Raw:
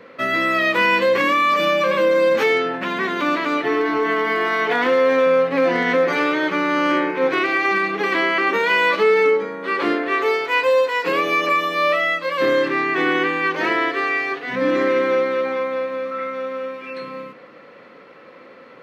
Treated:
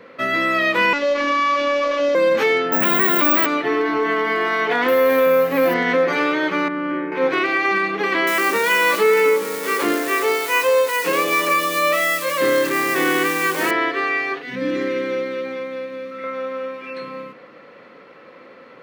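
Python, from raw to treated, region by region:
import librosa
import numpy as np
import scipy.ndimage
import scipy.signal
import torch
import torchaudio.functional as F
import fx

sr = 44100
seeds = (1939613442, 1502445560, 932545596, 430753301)

y = fx.chain(x, sr, fx.cvsd(bps=32000),
    fx.highpass(hz=120.0, slope=6),
    fx.robotise(hz=286.0), at=(0.93, 2.15))
y = fx.chain(y, sr, fx.resample_bad(factor=2, down='none', up='zero_stuff'),
    fx.env_flatten(amount_pct=70), at=(2.72, 3.46))
y = fx.chain(y, sr, fx.zero_step(step_db=-33.0),
    fx.resample_bad(factor=3, down='none', up='hold'), at=(4.88, 5.74))
y = fx.chain(y, sr, fx.lowpass(hz=1500.0, slope=12),
    fx.peak_eq(hz=760.0, db=-10.0, octaves=1.7), at=(6.68, 7.12))
y = fx.chain(y, sr, fx.crossing_spikes(level_db=-19.5),
    fx.echo_single(ms=437, db=-15.5), at=(8.27, 13.71))
y = fx.chain(y, sr, fx.peak_eq(hz=970.0, db=-12.0, octaves=1.5),
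    fx.notch(hz=640.0, q=11.0), at=(14.42, 16.24))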